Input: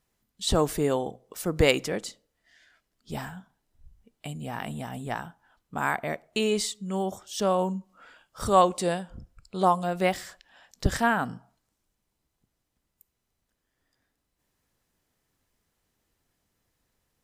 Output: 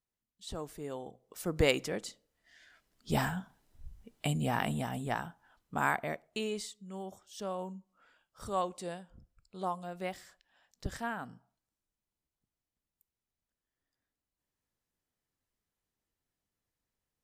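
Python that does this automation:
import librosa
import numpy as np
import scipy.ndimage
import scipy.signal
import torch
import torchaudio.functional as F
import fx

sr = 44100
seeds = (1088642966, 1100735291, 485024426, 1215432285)

y = fx.gain(x, sr, db=fx.line((0.77, -17.5), (1.48, -6.0), (2.03, -6.0), (3.21, 5.0), (4.35, 5.0), (5.07, -2.0), (5.82, -2.0), (6.71, -13.5)))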